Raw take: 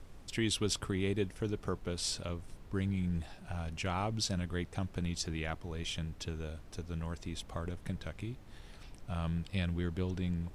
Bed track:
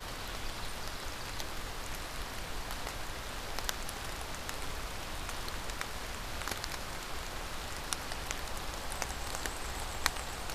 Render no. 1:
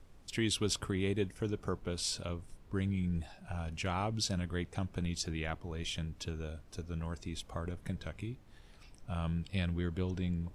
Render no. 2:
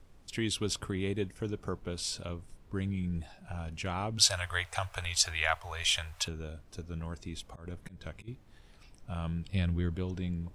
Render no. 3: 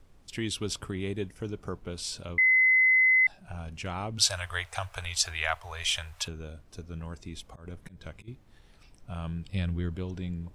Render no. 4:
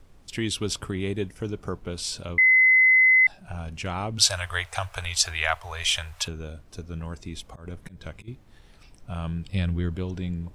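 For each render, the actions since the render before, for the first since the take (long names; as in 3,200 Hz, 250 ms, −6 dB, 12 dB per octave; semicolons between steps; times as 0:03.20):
noise reduction from a noise print 6 dB
0:04.18–0:06.28: drawn EQ curve 100 Hz 0 dB, 230 Hz −29 dB, 650 Hz +9 dB, 1,300 Hz +13 dB, 5,300 Hz +11 dB, 8,900 Hz +14 dB; 0:07.51–0:08.28: volume swells 168 ms; 0:09.46–0:09.96: low-shelf EQ 150 Hz +7 dB
0:02.38–0:03.27: beep over 2,040 Hz −18 dBFS
level +4.5 dB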